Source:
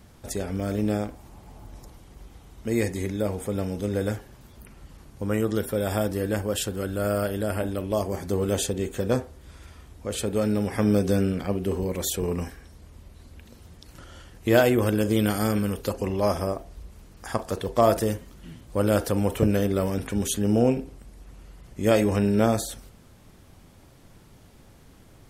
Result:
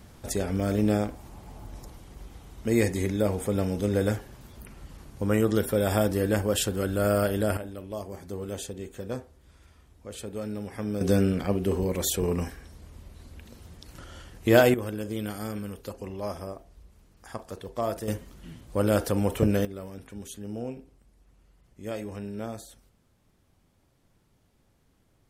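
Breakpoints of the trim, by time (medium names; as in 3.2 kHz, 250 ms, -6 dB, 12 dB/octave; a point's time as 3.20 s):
+1.5 dB
from 7.57 s -10 dB
from 11.01 s +0.5 dB
from 14.74 s -10 dB
from 18.08 s -1.5 dB
from 19.65 s -14.5 dB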